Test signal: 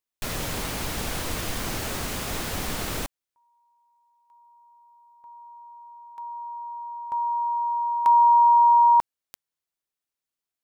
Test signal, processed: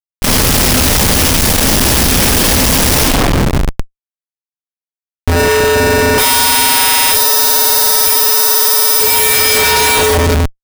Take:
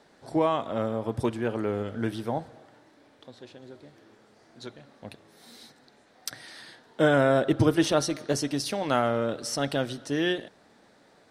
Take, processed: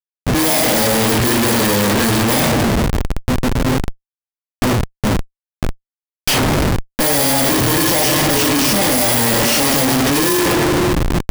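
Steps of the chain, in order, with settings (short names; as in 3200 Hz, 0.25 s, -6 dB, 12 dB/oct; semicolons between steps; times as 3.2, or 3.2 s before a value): FFT order left unsorted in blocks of 32 samples; two-slope reverb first 0.47 s, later 4 s, from -18 dB, DRR -8 dB; Schmitt trigger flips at -30.5 dBFS; gain +6 dB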